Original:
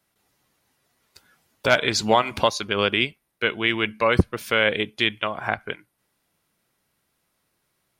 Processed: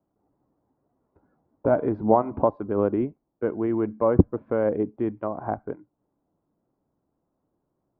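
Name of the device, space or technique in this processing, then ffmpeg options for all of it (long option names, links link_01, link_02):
under water: -af "lowpass=frequency=920:width=0.5412,lowpass=frequency=920:width=1.3066,equalizer=frequency=290:width_type=o:width=0.51:gain=7.5"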